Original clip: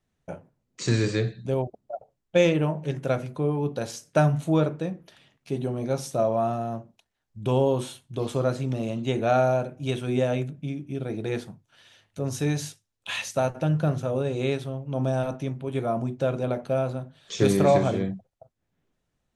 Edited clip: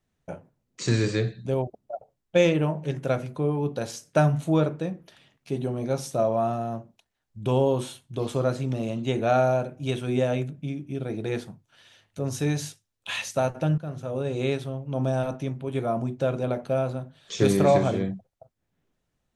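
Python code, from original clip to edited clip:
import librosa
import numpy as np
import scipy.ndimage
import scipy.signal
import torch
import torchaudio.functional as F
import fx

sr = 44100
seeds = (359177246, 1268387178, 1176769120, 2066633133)

y = fx.edit(x, sr, fx.fade_in_from(start_s=13.78, length_s=0.59, floor_db=-15.5), tone=tone)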